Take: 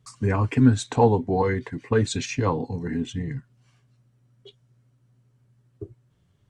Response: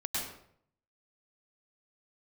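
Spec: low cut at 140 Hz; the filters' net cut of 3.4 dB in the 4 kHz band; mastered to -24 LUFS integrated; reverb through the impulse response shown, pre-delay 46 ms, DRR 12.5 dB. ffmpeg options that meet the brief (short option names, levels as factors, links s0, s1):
-filter_complex "[0:a]highpass=140,equalizer=f=4000:t=o:g=-4,asplit=2[s0][s1];[1:a]atrim=start_sample=2205,adelay=46[s2];[s1][s2]afir=irnorm=-1:irlink=0,volume=0.133[s3];[s0][s3]amix=inputs=2:normalize=0,volume=1.06"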